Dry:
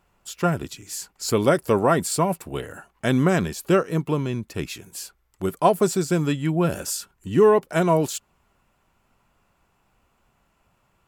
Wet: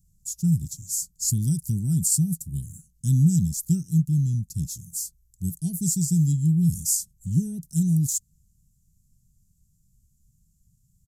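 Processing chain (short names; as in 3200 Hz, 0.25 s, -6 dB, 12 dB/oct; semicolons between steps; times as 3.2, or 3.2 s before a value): wow and flutter 24 cents; downsampling 32000 Hz; elliptic band-stop 160–6400 Hz, stop band 50 dB; gain +6.5 dB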